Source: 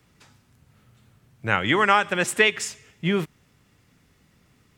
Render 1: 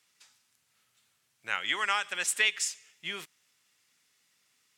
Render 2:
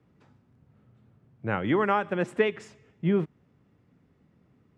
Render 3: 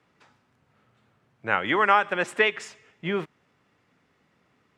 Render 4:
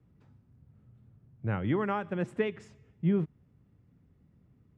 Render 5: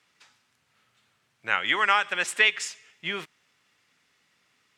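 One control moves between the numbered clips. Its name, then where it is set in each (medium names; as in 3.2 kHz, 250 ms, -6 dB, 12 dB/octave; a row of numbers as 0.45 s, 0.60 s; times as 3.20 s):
band-pass filter, frequency: 7.7 kHz, 260 Hz, 860 Hz, 100 Hz, 3 kHz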